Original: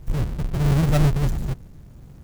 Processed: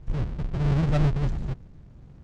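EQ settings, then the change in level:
high-frequency loss of the air 120 metres
−4.0 dB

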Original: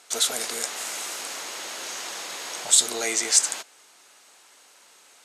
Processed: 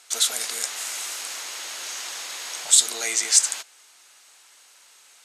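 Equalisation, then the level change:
tilt shelving filter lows −6 dB, about 820 Hz
−4.0 dB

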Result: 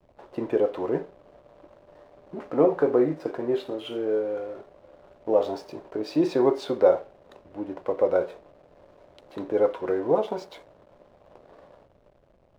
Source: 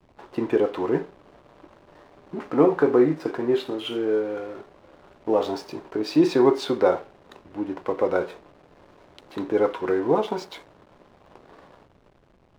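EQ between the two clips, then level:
low-shelf EQ 140 Hz +5.5 dB
parametric band 580 Hz +10.5 dB 0.66 octaves
−7.0 dB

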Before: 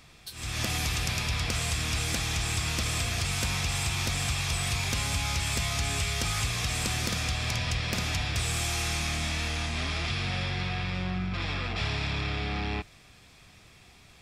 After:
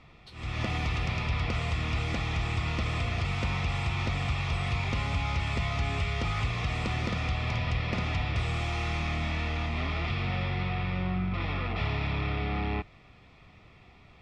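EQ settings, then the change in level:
Butterworth band-reject 1,600 Hz, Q 6.7
low-pass filter 2,300 Hz 12 dB per octave
+1.5 dB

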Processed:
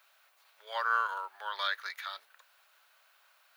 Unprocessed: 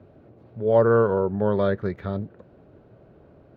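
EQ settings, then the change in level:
high-pass filter 1,000 Hz 24 dB per octave
spectral tilt +4.5 dB per octave
high-shelf EQ 3,400 Hz +10 dB
−2.0 dB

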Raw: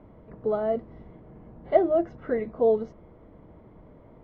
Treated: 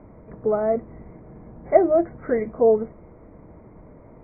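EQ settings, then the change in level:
linear-phase brick-wall low-pass 2,500 Hz
+4.5 dB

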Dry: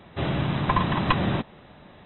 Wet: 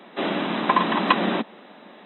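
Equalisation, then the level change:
Butterworth high-pass 200 Hz 48 dB per octave
+4.5 dB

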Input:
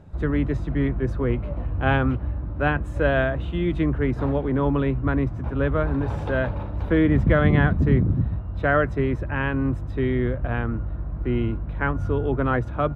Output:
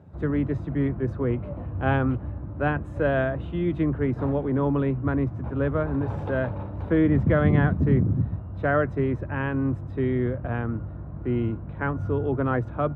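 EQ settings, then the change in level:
high-pass filter 76 Hz 24 dB per octave
high-shelf EQ 2,200 Hz −10.5 dB
−1.0 dB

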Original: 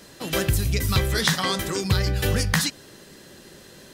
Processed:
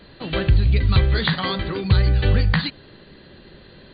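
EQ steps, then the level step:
linear-phase brick-wall low-pass 4,700 Hz
low-shelf EQ 94 Hz +12 dB
0.0 dB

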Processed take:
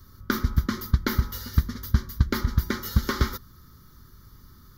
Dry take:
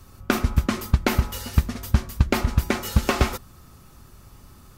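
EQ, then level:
high-shelf EQ 11,000 Hz +8.5 dB
phaser with its sweep stopped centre 2,600 Hz, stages 6
−2.0 dB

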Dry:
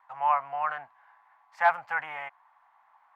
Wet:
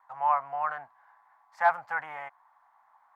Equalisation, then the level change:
parametric band 2,700 Hz −9 dB 0.81 octaves
0.0 dB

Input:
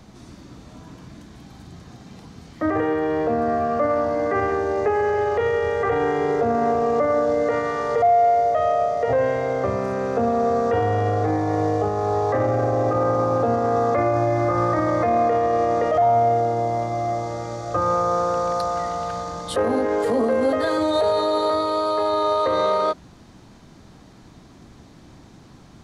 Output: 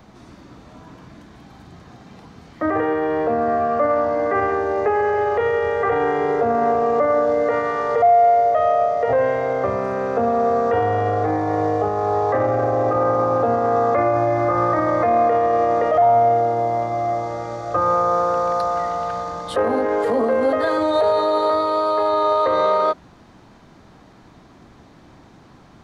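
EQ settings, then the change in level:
low-shelf EQ 470 Hz −10 dB
parametric band 9,300 Hz −13 dB 2.9 octaves
+7.0 dB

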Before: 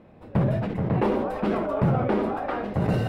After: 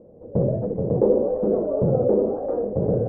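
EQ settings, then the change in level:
low-pass with resonance 500 Hz, resonance Q 4.9
high-frequency loss of the air 390 metres
−1.5 dB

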